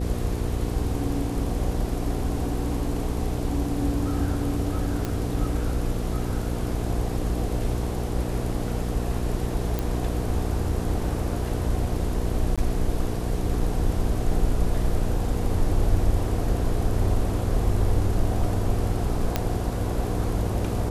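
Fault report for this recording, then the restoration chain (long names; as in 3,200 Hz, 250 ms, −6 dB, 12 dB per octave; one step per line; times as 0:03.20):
mains hum 60 Hz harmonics 8 −29 dBFS
0:05.05: click −14 dBFS
0:09.79: click
0:12.56–0:12.58: drop-out 16 ms
0:19.36: click −8 dBFS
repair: click removal
hum removal 60 Hz, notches 8
repair the gap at 0:12.56, 16 ms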